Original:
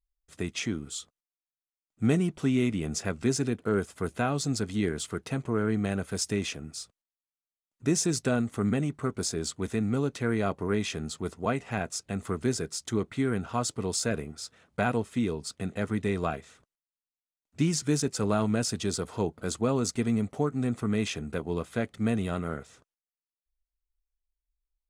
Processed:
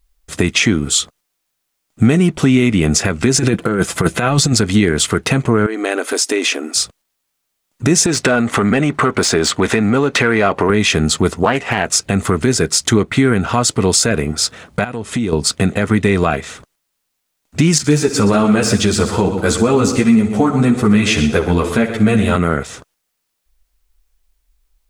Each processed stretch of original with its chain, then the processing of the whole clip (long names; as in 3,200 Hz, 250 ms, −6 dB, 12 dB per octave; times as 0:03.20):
0:03.34–0:04.53: comb filter 5.9 ms, depth 40% + compressor whose output falls as the input rises −30 dBFS, ratio −0.5
0:05.66–0:06.75: linear-phase brick-wall high-pass 240 Hz + downward compressor 2 to 1, threshold −42 dBFS
0:08.06–0:10.70: downward compressor 2.5 to 1, threshold −35 dBFS + mid-hump overdrive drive 15 dB, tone 2,300 Hz, clips at −21 dBFS
0:11.43–0:11.87: bass and treble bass −6 dB, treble −3 dB + highs frequency-modulated by the lows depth 0.26 ms
0:14.84–0:15.33: downward compressor, threshold −39 dBFS + low-pass filter 11,000 Hz 24 dB per octave
0:17.78–0:22.36: de-essing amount 65% + echo machine with several playback heads 62 ms, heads first and second, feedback 41%, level −13.5 dB + string-ensemble chorus
whole clip: dynamic equaliser 2,100 Hz, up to +4 dB, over −47 dBFS, Q 1; downward compressor 3 to 1, threshold −34 dBFS; boost into a limiter +24.5 dB; level −1 dB